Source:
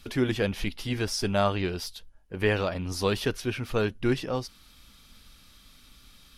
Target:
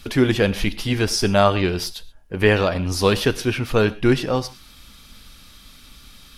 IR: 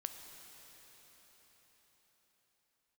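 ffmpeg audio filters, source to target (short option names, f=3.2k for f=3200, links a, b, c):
-filter_complex "[0:a]asplit=2[a][b];[1:a]atrim=start_sample=2205,atrim=end_sample=6174[c];[b][c]afir=irnorm=-1:irlink=0,volume=5dB[d];[a][d]amix=inputs=2:normalize=0,volume=1.5dB"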